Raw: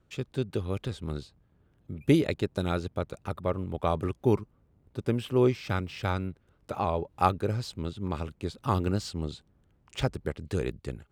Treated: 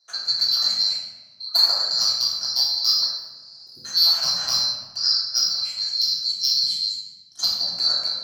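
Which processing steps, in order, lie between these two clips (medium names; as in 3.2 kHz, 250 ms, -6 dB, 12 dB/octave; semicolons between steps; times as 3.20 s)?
four frequency bands reordered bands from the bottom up 2413; spectral replace 4.25–5.17 s, 390–6800 Hz before; high-pass 76 Hz 24 dB/octave; time-frequency box 7.92–10.03 s, 300–2200 Hz -16 dB; graphic EQ 250/500/1000/4000/8000 Hz -7/+11/+4/+11/-5 dB; level rider gain up to 9 dB; overload inside the chain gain 6.5 dB; speed mistake 33 rpm record played at 45 rpm; simulated room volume 790 m³, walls mixed, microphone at 3.2 m; trim -7.5 dB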